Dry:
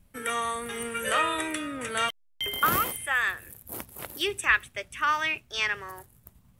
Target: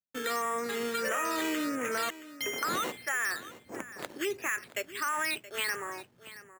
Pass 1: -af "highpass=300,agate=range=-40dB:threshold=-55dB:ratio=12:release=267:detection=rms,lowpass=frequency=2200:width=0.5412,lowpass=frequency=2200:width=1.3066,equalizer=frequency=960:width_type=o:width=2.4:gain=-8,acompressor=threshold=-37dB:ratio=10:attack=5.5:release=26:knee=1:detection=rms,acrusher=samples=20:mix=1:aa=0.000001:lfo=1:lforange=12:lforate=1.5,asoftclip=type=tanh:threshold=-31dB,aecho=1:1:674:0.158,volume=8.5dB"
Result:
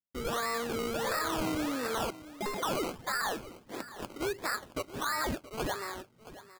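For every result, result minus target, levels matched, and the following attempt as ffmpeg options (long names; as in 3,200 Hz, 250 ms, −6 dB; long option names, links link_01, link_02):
soft clipping: distortion +18 dB; sample-and-hold swept by an LFO: distortion +13 dB
-af "highpass=300,agate=range=-40dB:threshold=-55dB:ratio=12:release=267:detection=rms,lowpass=frequency=2200:width=0.5412,lowpass=frequency=2200:width=1.3066,equalizer=frequency=960:width_type=o:width=2.4:gain=-8,acompressor=threshold=-37dB:ratio=10:attack=5.5:release=26:knee=1:detection=rms,acrusher=samples=20:mix=1:aa=0.000001:lfo=1:lforange=12:lforate=1.5,asoftclip=type=tanh:threshold=-20.5dB,aecho=1:1:674:0.158,volume=8.5dB"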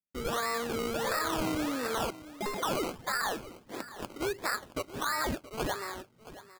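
sample-and-hold swept by an LFO: distortion +13 dB
-af "highpass=300,agate=range=-40dB:threshold=-55dB:ratio=12:release=267:detection=rms,lowpass=frequency=2200:width=0.5412,lowpass=frequency=2200:width=1.3066,equalizer=frequency=960:width_type=o:width=2.4:gain=-8,acompressor=threshold=-37dB:ratio=10:attack=5.5:release=26:knee=1:detection=rms,acrusher=samples=7:mix=1:aa=0.000001:lfo=1:lforange=4.2:lforate=1.5,asoftclip=type=tanh:threshold=-20.5dB,aecho=1:1:674:0.158,volume=8.5dB"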